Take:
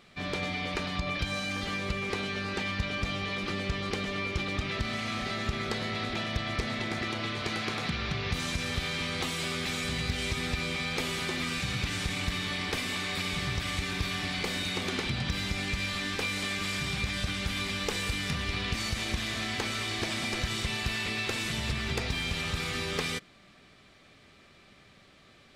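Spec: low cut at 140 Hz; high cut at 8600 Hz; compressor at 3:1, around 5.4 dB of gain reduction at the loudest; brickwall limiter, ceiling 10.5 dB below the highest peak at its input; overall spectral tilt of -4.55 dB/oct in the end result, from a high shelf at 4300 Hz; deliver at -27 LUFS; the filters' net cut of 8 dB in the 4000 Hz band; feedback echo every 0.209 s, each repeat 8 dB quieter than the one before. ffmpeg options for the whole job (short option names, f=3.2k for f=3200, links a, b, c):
-af "highpass=140,lowpass=8.6k,equalizer=f=4k:t=o:g=-6.5,highshelf=f=4.3k:g=-7,acompressor=threshold=-37dB:ratio=3,alimiter=level_in=11dB:limit=-24dB:level=0:latency=1,volume=-11dB,aecho=1:1:209|418|627|836|1045:0.398|0.159|0.0637|0.0255|0.0102,volume=15.5dB"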